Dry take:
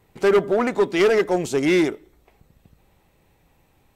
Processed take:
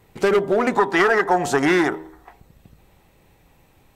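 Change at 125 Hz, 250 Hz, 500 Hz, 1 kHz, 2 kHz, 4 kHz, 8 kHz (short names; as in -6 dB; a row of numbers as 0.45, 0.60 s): +0.5, 0.0, -1.0, +7.5, +6.0, 0.0, +2.0 dB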